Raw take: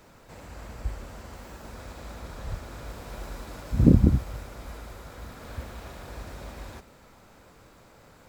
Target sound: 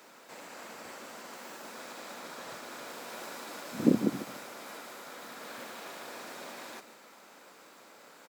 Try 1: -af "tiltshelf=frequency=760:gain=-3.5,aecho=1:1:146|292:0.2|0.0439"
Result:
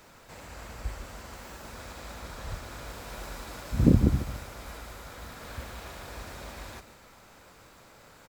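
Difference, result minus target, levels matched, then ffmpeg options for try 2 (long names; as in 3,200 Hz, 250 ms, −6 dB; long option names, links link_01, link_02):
250 Hz band −2.5 dB
-af "highpass=frequency=220:width=0.5412,highpass=frequency=220:width=1.3066,tiltshelf=frequency=760:gain=-3.5,aecho=1:1:146|292:0.2|0.0439"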